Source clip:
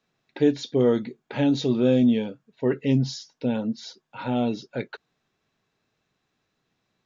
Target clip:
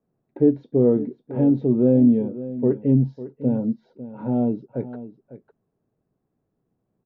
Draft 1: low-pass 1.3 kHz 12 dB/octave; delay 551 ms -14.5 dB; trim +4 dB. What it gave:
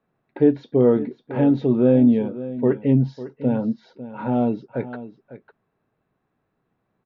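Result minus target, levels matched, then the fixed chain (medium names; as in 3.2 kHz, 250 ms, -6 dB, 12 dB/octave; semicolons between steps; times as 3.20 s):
1 kHz band +7.0 dB
low-pass 530 Hz 12 dB/octave; delay 551 ms -14.5 dB; trim +4 dB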